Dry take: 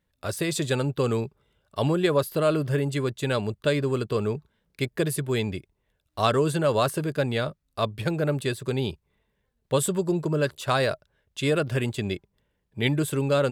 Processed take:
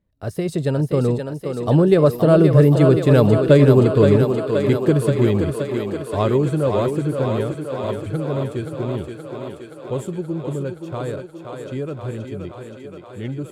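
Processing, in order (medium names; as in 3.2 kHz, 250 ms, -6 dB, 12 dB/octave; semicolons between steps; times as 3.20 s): Doppler pass-by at 3.28 s, 23 m/s, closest 29 m; tilt shelf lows +8 dB, about 940 Hz; thinning echo 524 ms, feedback 77%, high-pass 230 Hz, level -5 dB; trim +7 dB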